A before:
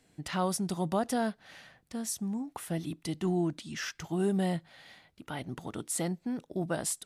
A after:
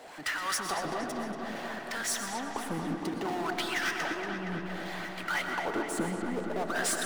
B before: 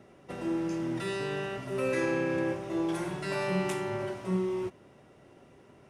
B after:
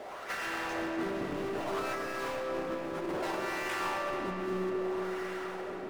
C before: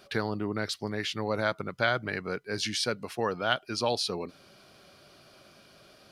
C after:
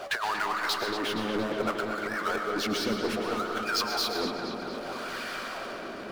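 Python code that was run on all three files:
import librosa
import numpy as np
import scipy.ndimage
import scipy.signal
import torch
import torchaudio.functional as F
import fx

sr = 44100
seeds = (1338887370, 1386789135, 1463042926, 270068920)

y = fx.peak_eq(x, sr, hz=84.0, db=-13.5, octaves=1.1)
y = fx.wah_lfo(y, sr, hz=0.62, low_hz=210.0, high_hz=1700.0, q=2.3)
y = fx.tilt_eq(y, sr, slope=2.5)
y = fx.over_compress(y, sr, threshold_db=-44.0, ratio=-0.5)
y = fx.power_curve(y, sr, exponent=0.5)
y = fx.hpss(y, sr, part='percussive', gain_db=7)
y = fx.echo_filtered(y, sr, ms=234, feedback_pct=77, hz=4800.0, wet_db=-7.0)
y = fx.rev_freeverb(y, sr, rt60_s=1.4, hf_ratio=0.35, predelay_ms=80, drr_db=5.0)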